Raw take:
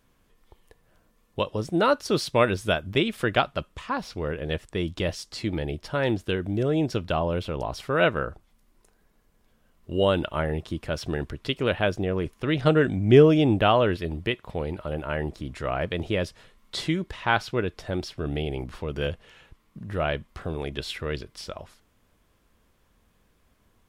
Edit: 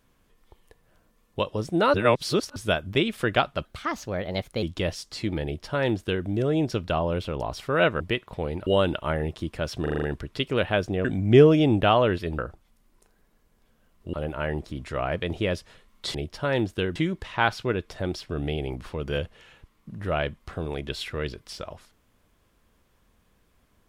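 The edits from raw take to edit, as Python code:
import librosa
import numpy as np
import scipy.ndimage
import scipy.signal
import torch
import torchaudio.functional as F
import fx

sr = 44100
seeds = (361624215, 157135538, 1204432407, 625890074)

y = fx.edit(x, sr, fx.reverse_span(start_s=1.94, length_s=0.62),
    fx.speed_span(start_s=3.65, length_s=1.18, speed=1.21),
    fx.duplicate(start_s=5.65, length_s=0.81, to_s=16.84),
    fx.swap(start_s=8.21, length_s=1.75, other_s=14.17, other_length_s=0.66),
    fx.stutter(start_s=11.12, slice_s=0.04, count=6),
    fx.cut(start_s=12.14, length_s=0.69), tone=tone)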